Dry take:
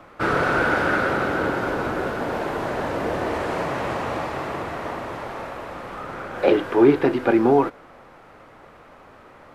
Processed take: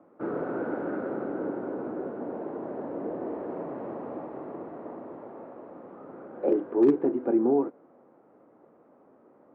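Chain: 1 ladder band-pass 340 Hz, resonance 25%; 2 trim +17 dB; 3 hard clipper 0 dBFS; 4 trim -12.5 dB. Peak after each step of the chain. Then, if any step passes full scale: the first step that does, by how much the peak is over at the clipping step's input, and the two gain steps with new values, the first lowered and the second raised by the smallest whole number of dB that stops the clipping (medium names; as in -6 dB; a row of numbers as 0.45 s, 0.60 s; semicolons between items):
-14.0 dBFS, +3.0 dBFS, 0.0 dBFS, -12.5 dBFS; step 2, 3.0 dB; step 2 +14 dB, step 4 -9.5 dB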